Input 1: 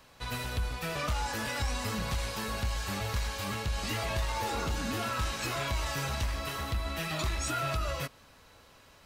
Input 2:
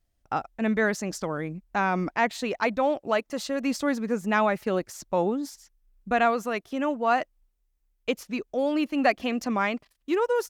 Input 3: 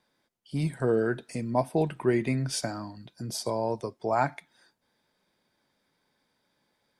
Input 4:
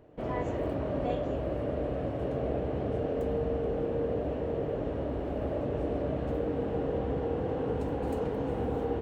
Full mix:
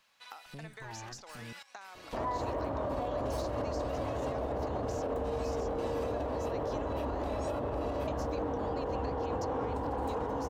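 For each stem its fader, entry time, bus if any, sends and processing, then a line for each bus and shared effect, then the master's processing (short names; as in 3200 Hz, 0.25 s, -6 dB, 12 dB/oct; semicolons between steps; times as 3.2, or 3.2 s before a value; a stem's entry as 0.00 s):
-14.0 dB, 0.00 s, bus A, no send, bell 2800 Hz +6 dB 1.7 oct; step gate "xxx..x.xx.x" 83 bpm -12 dB
-4.0 dB, 0.00 s, bus A, no send, band shelf 5200 Hz +11 dB 1.1 oct; compressor, threshold -32 dBFS, peak gain reduction 15 dB
-7.5 dB, 0.00 s, muted 1.53–2.91, no bus, no send, minimum comb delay 1.1 ms; compressor 2:1, threshold -40 dBFS, peak gain reduction 10 dB; limiter -30.5 dBFS, peak gain reduction 6.5 dB
+2.0 dB, 1.95 s, no bus, no send, fifteen-band EQ 160 Hz -9 dB, 400 Hz -4 dB, 1000 Hz +11 dB, 2500 Hz -5 dB
bus A: 0.0 dB, HPF 710 Hz 12 dB/oct; compressor 6:1, threshold -45 dBFS, peak gain reduction 11 dB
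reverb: off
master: limiter -26 dBFS, peak gain reduction 10.5 dB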